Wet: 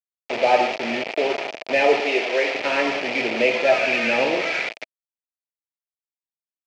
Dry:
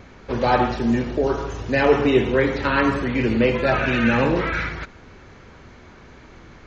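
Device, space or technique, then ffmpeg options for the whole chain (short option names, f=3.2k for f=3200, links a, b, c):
hand-held game console: -filter_complex "[0:a]acrusher=bits=3:mix=0:aa=0.000001,highpass=420,equalizer=f=650:t=q:w=4:g=8,equalizer=f=1.1k:t=q:w=4:g=-9,equalizer=f=1.5k:t=q:w=4:g=-8,equalizer=f=2.4k:t=q:w=4:g=8,equalizer=f=3.8k:t=q:w=4:g=-5,lowpass=f=4.6k:w=0.5412,lowpass=f=4.6k:w=1.3066,asettb=1/sr,asplit=3[a][b][c];[a]atrim=end=2.004[d];[b]atrim=start=2:end=2.55,asetpts=PTS-STARTPTS,afade=t=in:d=0.004:c=qsin,afade=t=out:st=0.546:d=0.004:c=qsin,highpass=390[e];[c]atrim=start=2.546[f];[d][e]acrossfade=d=0.004:c1=hsin:c2=qsin[g];[g][f]acrossfade=d=0.004:c1=qsin:c2=hsin"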